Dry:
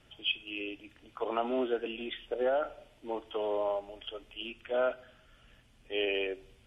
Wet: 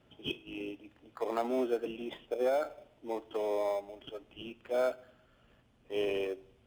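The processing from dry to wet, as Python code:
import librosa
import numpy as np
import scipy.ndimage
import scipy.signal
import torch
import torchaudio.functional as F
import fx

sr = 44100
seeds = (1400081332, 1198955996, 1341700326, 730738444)

p1 = fx.sample_hold(x, sr, seeds[0], rate_hz=2900.0, jitter_pct=0)
p2 = x + F.gain(torch.from_numpy(p1), -5.0).numpy()
p3 = fx.highpass(p2, sr, hz=120.0, slope=6)
p4 = fx.high_shelf(p3, sr, hz=2500.0, db=-9.5)
y = F.gain(torch.from_numpy(p4), -3.0).numpy()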